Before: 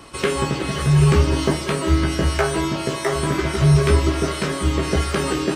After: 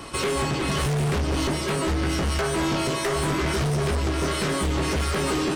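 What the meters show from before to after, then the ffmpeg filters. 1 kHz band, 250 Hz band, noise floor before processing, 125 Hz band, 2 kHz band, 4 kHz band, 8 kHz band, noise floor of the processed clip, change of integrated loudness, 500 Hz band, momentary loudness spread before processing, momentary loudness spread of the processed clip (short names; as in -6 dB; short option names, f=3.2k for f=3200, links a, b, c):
-2.5 dB, -4.5 dB, -29 dBFS, -7.5 dB, -2.5 dB, -1.5 dB, -1.5 dB, -28 dBFS, -5.0 dB, -4.5 dB, 7 LU, 1 LU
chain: -af "alimiter=limit=-13dB:level=0:latency=1:release=361,aeval=exprs='0.224*(cos(1*acos(clip(val(0)/0.224,-1,1)))-cos(1*PI/2))+0.0891*(cos(5*acos(clip(val(0)/0.224,-1,1)))-cos(5*PI/2))':c=same,volume=-5dB"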